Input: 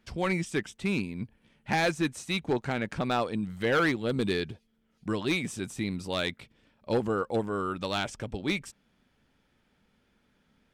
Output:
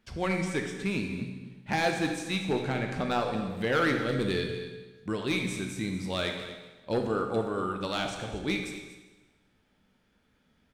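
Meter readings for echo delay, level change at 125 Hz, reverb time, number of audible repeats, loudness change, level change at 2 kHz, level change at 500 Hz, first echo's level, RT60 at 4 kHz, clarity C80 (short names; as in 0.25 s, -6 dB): 0.24 s, 0.0 dB, 1.2 s, 1, -0.5 dB, -0.5 dB, 0.0 dB, -14.5 dB, 1.1 s, 6.5 dB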